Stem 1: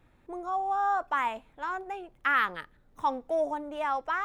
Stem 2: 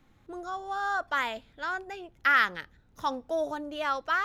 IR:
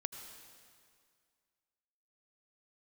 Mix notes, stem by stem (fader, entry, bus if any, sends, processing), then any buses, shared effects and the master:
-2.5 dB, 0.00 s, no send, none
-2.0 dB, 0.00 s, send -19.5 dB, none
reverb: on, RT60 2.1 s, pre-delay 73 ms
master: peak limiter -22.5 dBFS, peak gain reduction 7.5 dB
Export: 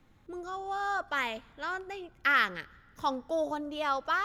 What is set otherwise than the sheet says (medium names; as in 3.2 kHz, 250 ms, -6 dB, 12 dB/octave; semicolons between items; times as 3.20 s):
stem 1 -2.5 dB -> -9.5 dB; master: missing peak limiter -22.5 dBFS, peak gain reduction 7.5 dB